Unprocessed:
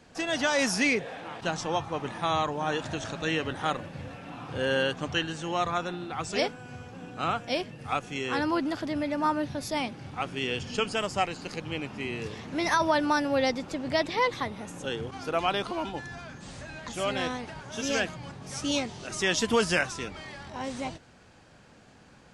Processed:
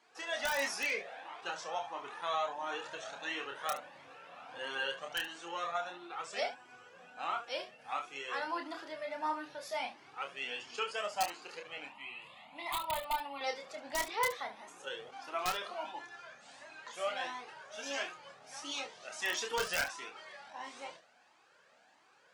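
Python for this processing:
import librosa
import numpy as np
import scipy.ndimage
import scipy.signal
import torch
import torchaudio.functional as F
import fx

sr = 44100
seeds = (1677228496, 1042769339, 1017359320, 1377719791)

y = scipy.signal.sosfilt(scipy.signal.butter(2, 610.0, 'highpass', fs=sr, output='sos'), x)
y = fx.high_shelf(y, sr, hz=3800.0, db=-6.0)
y = (np.mod(10.0 ** (16.5 / 20.0) * y + 1.0, 2.0) - 1.0) / 10.0 ** (16.5 / 20.0)
y = fx.fixed_phaser(y, sr, hz=1600.0, stages=6, at=(11.89, 13.41))
y = fx.room_early_taps(y, sr, ms=(29, 72), db=(-4.5, -12.0))
y = fx.comb_cascade(y, sr, direction='rising', hz=1.5)
y = F.gain(torch.from_numpy(y), -2.5).numpy()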